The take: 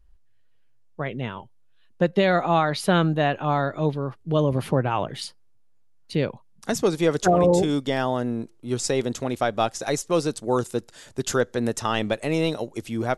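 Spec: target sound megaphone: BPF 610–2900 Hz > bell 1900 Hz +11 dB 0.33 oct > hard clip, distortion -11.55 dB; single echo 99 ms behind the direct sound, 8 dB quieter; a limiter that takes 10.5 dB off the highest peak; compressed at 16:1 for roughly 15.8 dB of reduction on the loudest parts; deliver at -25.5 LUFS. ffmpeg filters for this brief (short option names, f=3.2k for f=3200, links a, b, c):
-af "acompressor=threshold=-30dB:ratio=16,alimiter=level_in=4dB:limit=-24dB:level=0:latency=1,volume=-4dB,highpass=610,lowpass=2.9k,equalizer=f=1.9k:t=o:w=0.33:g=11,aecho=1:1:99:0.398,asoftclip=type=hard:threshold=-38dB,volume=19.5dB"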